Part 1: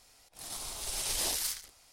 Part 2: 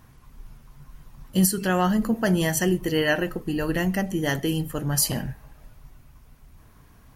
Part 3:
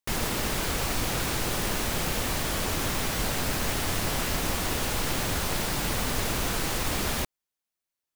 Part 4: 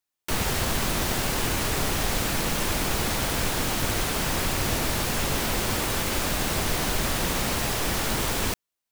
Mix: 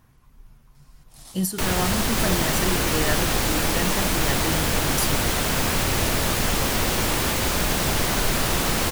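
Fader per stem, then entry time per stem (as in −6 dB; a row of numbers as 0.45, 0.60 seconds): −4.5, −5.0, +0.5, +2.0 decibels; 0.75, 0.00, 2.10, 1.30 seconds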